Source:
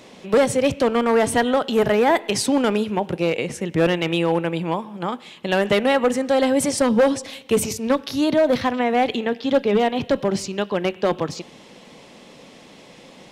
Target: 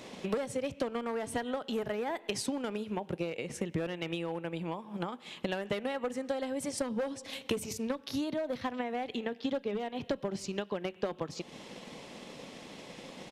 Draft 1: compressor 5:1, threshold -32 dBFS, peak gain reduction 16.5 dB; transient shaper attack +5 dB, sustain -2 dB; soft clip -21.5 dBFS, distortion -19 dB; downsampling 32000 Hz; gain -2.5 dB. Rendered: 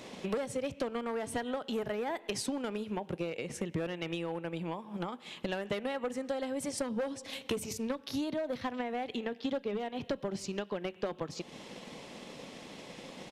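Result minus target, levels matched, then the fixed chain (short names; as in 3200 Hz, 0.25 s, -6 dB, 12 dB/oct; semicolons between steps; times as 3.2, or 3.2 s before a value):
soft clip: distortion +9 dB
compressor 5:1, threshold -32 dBFS, peak gain reduction 16.5 dB; transient shaper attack +5 dB, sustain -2 dB; soft clip -15 dBFS, distortion -28 dB; downsampling 32000 Hz; gain -2.5 dB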